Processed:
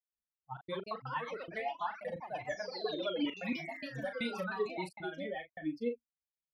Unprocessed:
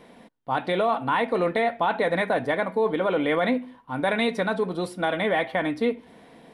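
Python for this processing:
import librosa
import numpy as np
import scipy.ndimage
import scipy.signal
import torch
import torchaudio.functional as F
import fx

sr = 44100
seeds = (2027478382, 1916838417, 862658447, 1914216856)

y = fx.bin_expand(x, sr, power=3.0)
y = fx.step_gate(y, sr, bpm=132, pattern='.xxxx.x.xxxx', floor_db=-60.0, edge_ms=4.5)
y = fx.spec_paint(y, sr, seeds[0], shape='fall', start_s=2.71, length_s=1.95, low_hz=1100.0, high_hz=4400.0, level_db=-41.0)
y = fx.echo_pitch(y, sr, ms=288, semitones=3, count=3, db_per_echo=-6.0)
y = fx.doubler(y, sr, ms=38.0, db=-8.5)
y = fx.rotary_switch(y, sr, hz=7.5, then_hz=0.7, switch_at_s=2.81)
y = y * 10.0 ** (-5.0 / 20.0)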